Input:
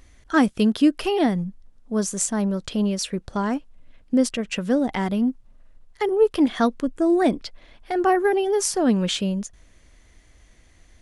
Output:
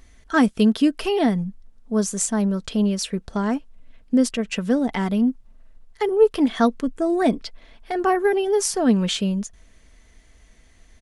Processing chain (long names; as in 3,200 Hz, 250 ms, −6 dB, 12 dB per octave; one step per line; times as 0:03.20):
comb filter 4.5 ms, depth 33%